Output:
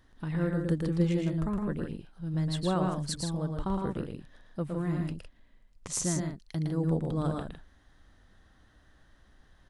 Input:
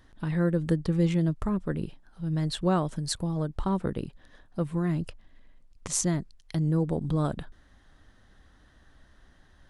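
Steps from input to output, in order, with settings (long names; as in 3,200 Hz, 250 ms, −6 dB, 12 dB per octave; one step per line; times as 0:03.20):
loudspeakers that aren't time-aligned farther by 39 metres −4 dB, 54 metres −7 dB
level −4.5 dB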